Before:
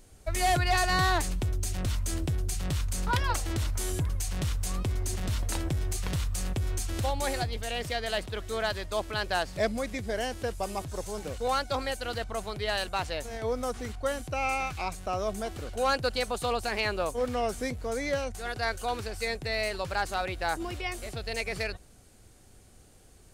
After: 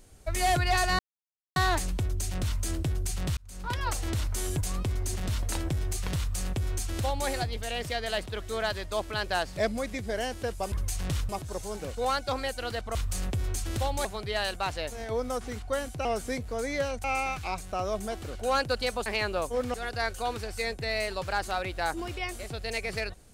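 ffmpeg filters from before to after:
ffmpeg -i in.wav -filter_complex "[0:a]asplit=12[link_01][link_02][link_03][link_04][link_05][link_06][link_07][link_08][link_09][link_10][link_11][link_12];[link_01]atrim=end=0.99,asetpts=PTS-STARTPTS,afade=type=out:start_time=0.986:duration=0.004:curve=hsin,apad=pad_dur=0.57[link_13];[link_02]atrim=start=0.99:end=2.8,asetpts=PTS-STARTPTS,afade=type=in:duration=0.004:curve=hsin,afade=type=out:start_time=1.806:duration=0.004:curve=hsin[link_14];[link_03]atrim=start=2.8:end=4.042,asetpts=PTS-STARTPTS,afade=type=in:duration=0.63[link_15];[link_04]atrim=start=4.608:end=10.722[link_16];[link_05]atrim=start=4.038:end=4.612[link_17];[link_06]atrim=start=10.718:end=12.382[link_18];[link_07]atrim=start=6.178:end=7.282[link_19];[link_08]atrim=start=12.378:end=14.382[link_20];[link_09]atrim=start=17.378:end=18.372[link_21];[link_10]atrim=start=14.378:end=16.402[link_22];[link_11]atrim=start=16.698:end=17.382[link_23];[link_12]atrim=start=18.368[link_24];[link_13][link_14][link_15]concat=n=3:v=0:a=1[link_25];[link_25][link_16]acrossfade=duration=0.004:curve1=hsin:curve2=hsin[link_26];[link_26][link_17]acrossfade=duration=0.004:curve1=hsin:curve2=hsin[link_27];[link_27][link_18]acrossfade=duration=0.004:curve1=hsin:curve2=hsin[link_28];[link_28][link_19]acrossfade=duration=0.004:curve1=hsin:curve2=hsin[link_29];[link_29][link_20]acrossfade=duration=0.004:curve1=hsin:curve2=hsin[link_30];[link_30][link_21]acrossfade=duration=0.004:curve1=hsin:curve2=hsin[link_31];[link_31][link_22]acrossfade=duration=0.004:curve1=hsin:curve2=hsin[link_32];[link_32][link_23]acrossfade=duration=0.004:curve1=hsin:curve2=hsin[link_33];[link_33][link_24]acrossfade=duration=0.004:curve1=hsin:curve2=hsin" out.wav

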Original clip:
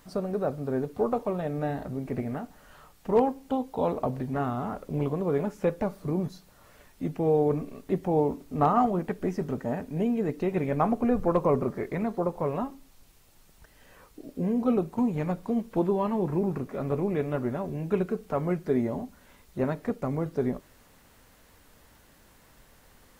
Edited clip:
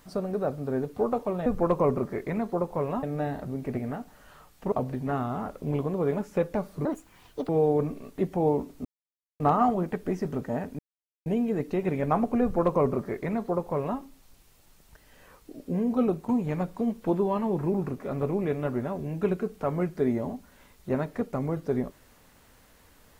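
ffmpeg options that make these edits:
ffmpeg -i in.wav -filter_complex "[0:a]asplit=8[link_01][link_02][link_03][link_04][link_05][link_06][link_07][link_08];[link_01]atrim=end=1.462[link_09];[link_02]atrim=start=11.108:end=12.682[link_10];[link_03]atrim=start=1.458:end=3.152[link_11];[link_04]atrim=start=3.988:end=6.124[link_12];[link_05]atrim=start=6.12:end=7.2,asetpts=PTS-STARTPTS,asetrate=74529,aresample=44100,atrim=end_sample=28182,asetpts=PTS-STARTPTS[link_13];[link_06]atrim=start=7.196:end=8.56,asetpts=PTS-STARTPTS,afade=type=out:start_time=1.36:duration=0.004:curve=hsin,apad=pad_dur=0.55[link_14];[link_07]atrim=start=8.56:end=9.95,asetpts=PTS-STARTPTS,afade=type=in:duration=0.004:curve=hsin,afade=type=out:start_time=1.386:duration=0.004:curve=hsin,apad=pad_dur=0.47[link_15];[link_08]atrim=start=9.95,asetpts=PTS-STARTPTS,afade=type=in:duration=0.004:curve=hsin[link_16];[link_09][link_10]acrossfade=duration=0.004:curve1=hsin:curve2=hsin[link_17];[link_17][link_11]acrossfade=duration=0.004:curve1=hsin:curve2=hsin[link_18];[link_18][link_12]acrossfade=duration=0.004:curve1=hsin:curve2=hsin[link_19];[link_19][link_13]acrossfade=duration=0.004:curve1=hsin:curve2=hsin[link_20];[link_14][link_15][link_16]concat=n=3:v=0:a=1[link_21];[link_20][link_21]acrossfade=duration=0.004:curve1=hsin:curve2=hsin" out.wav

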